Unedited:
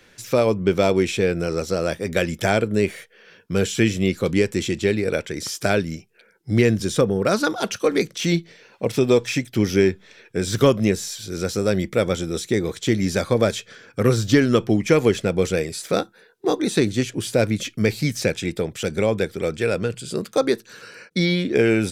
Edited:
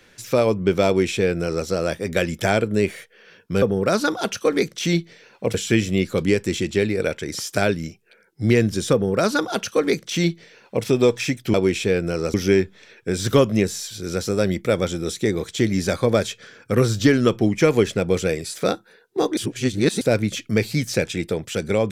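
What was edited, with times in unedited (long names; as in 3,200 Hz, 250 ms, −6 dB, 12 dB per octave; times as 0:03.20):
0:00.87–0:01.67: duplicate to 0:09.62
0:07.01–0:08.93: duplicate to 0:03.62
0:16.65–0:17.29: reverse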